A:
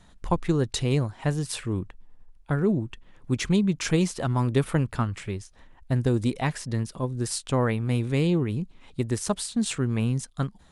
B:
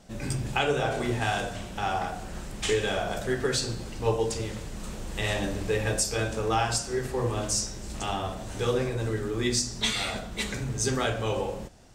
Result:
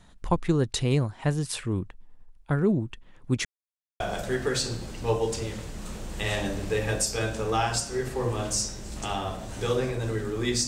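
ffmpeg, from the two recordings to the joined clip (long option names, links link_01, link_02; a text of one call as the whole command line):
ffmpeg -i cue0.wav -i cue1.wav -filter_complex "[0:a]apad=whole_dur=10.67,atrim=end=10.67,asplit=2[link_01][link_02];[link_01]atrim=end=3.45,asetpts=PTS-STARTPTS,afade=type=out:start_time=3.446:duration=0.004:curve=hsin[link_03];[link_02]atrim=start=3.45:end=4,asetpts=PTS-STARTPTS,volume=0[link_04];[1:a]atrim=start=2.98:end=9.65,asetpts=PTS-STARTPTS,afade=type=in:duration=0.004:curve=hsin[link_05];[link_03][link_04][link_05]concat=n=3:v=0:a=1" out.wav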